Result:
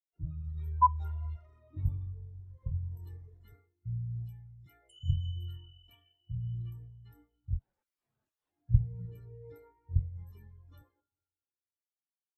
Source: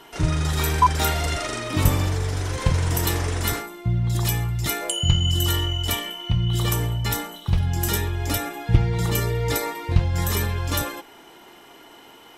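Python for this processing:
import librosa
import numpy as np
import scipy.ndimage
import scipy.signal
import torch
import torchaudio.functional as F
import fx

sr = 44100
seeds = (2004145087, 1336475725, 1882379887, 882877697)

y = fx.rev_schroeder(x, sr, rt60_s=3.4, comb_ms=30, drr_db=9.5)
y = fx.overflow_wrap(y, sr, gain_db=26.5, at=(7.58, 8.68), fade=0.02)
y = fx.spectral_expand(y, sr, expansion=2.5)
y = y * librosa.db_to_amplitude(-5.5)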